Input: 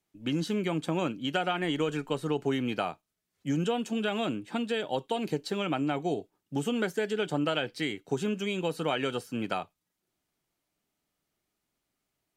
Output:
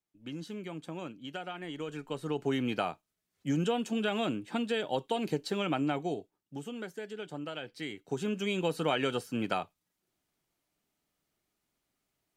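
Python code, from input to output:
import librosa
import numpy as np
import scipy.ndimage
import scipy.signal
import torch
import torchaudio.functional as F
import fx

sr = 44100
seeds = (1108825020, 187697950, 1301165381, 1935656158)

y = fx.gain(x, sr, db=fx.line((1.71, -11.0), (2.58, -1.0), (5.88, -1.0), (6.65, -11.0), (7.52, -11.0), (8.52, 0.0)))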